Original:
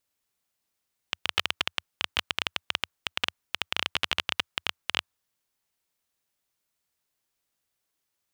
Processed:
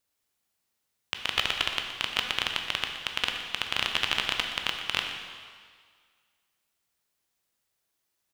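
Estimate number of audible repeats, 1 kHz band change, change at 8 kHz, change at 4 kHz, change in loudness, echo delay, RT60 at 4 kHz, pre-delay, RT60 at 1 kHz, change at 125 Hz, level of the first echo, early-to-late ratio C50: 1, +1.5 dB, +1.5 dB, +2.0 dB, +1.5 dB, 0.121 s, 1.8 s, 14 ms, 1.9 s, +1.5 dB, -12.5 dB, 4.5 dB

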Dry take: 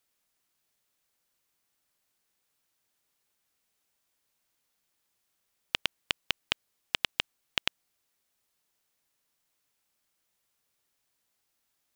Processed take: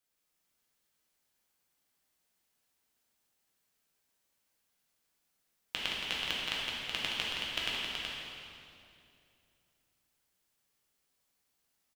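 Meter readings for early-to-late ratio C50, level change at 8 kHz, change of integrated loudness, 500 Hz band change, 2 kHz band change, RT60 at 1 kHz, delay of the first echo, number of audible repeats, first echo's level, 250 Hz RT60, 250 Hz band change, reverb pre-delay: -4.0 dB, -1.0 dB, -1.5 dB, 0.0 dB, -1.0 dB, 2.4 s, 0.17 s, 2, -6.0 dB, 3.0 s, +1.0 dB, 5 ms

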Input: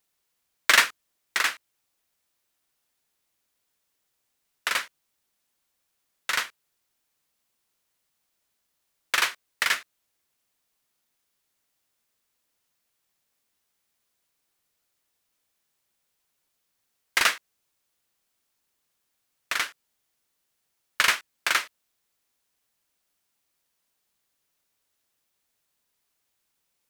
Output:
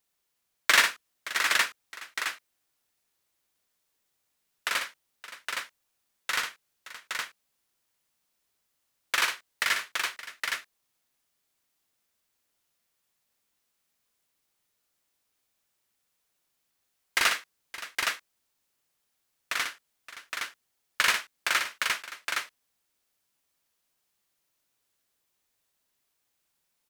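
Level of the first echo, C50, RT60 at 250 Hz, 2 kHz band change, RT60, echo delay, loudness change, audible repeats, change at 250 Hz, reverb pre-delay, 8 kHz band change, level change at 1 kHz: -6.5 dB, none, none, -1.0 dB, none, 60 ms, -3.5 dB, 3, -1.0 dB, none, -1.0 dB, -1.0 dB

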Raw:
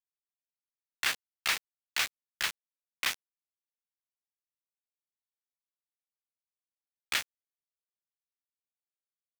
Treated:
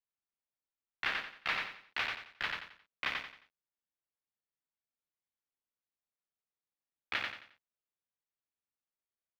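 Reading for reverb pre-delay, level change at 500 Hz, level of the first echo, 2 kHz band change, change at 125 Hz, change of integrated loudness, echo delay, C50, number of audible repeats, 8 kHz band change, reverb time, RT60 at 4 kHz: none, +0.5 dB, -3.5 dB, -2.0 dB, +1.5 dB, -4.5 dB, 89 ms, none, 4, -22.5 dB, none, none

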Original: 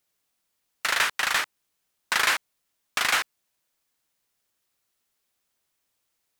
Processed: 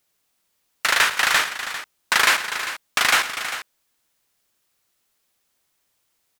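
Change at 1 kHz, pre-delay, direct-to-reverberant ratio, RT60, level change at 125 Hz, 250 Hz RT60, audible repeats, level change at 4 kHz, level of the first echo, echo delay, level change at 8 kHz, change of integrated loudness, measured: +6.0 dB, none, none, none, n/a, none, 4, +6.0 dB, -14.5 dB, 0.108 s, +6.0 dB, +4.5 dB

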